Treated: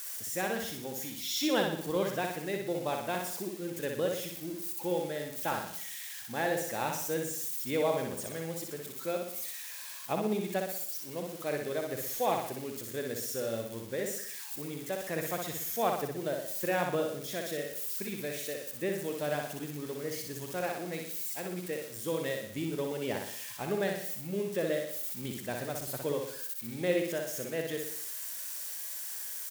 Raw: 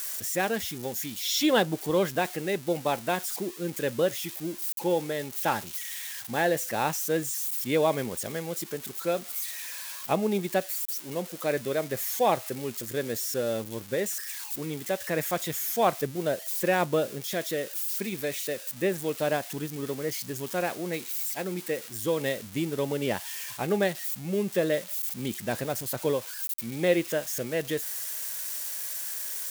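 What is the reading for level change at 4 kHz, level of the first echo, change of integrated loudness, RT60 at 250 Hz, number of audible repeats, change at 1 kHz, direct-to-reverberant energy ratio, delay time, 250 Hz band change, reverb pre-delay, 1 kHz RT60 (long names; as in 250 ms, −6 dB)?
−5.0 dB, −4.0 dB, −5.0 dB, no reverb audible, 6, −5.0 dB, no reverb audible, 61 ms, −5.0 dB, no reverb audible, no reverb audible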